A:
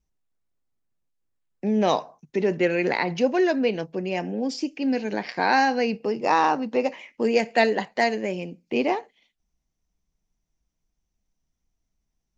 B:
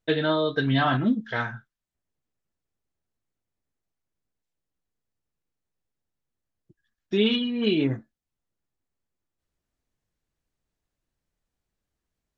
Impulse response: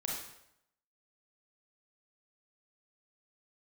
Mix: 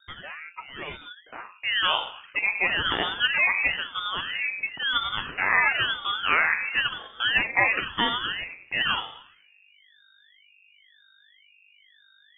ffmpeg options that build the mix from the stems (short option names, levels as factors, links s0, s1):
-filter_complex "[0:a]highpass=f=83:w=0.5412,highpass=f=83:w=1.3066,acrusher=bits=6:mix=0:aa=0.5,volume=0.668,asplit=3[s0][s1][s2];[s1]volume=0.562[s3];[1:a]tiltshelf=f=640:g=-7,aeval=exprs='val(0)+0.00891*(sin(2*PI*50*n/s)+sin(2*PI*2*50*n/s)/2+sin(2*PI*3*50*n/s)/3+sin(2*PI*4*50*n/s)/4+sin(2*PI*5*50*n/s)/5)':c=same,volume=0.211[s4];[s2]apad=whole_len=545592[s5];[s4][s5]sidechaincompress=threshold=0.0141:ratio=8:attack=9.2:release=463[s6];[2:a]atrim=start_sample=2205[s7];[s3][s7]afir=irnorm=-1:irlink=0[s8];[s0][s6][s8]amix=inputs=3:normalize=0,crystalizer=i=2.5:c=0,lowpass=f=2300:t=q:w=0.5098,lowpass=f=2300:t=q:w=0.6013,lowpass=f=2300:t=q:w=0.9,lowpass=f=2300:t=q:w=2.563,afreqshift=-2700,aeval=exprs='val(0)*sin(2*PI*590*n/s+590*0.85/0.99*sin(2*PI*0.99*n/s))':c=same"